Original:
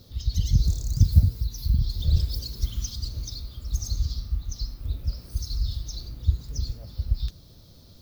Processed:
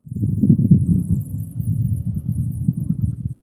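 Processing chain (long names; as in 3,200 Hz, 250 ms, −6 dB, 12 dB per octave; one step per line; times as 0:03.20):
wrong playback speed 33 rpm record played at 78 rpm
surface crackle 80 per second −36 dBFS
on a send: loudspeakers that aren't time-aligned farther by 31 metres −6 dB, 74 metres −2 dB
on the sum: automatic gain control gain up to 5.5 dB
every bin expanded away from the loudest bin 1.5 to 1
level +2 dB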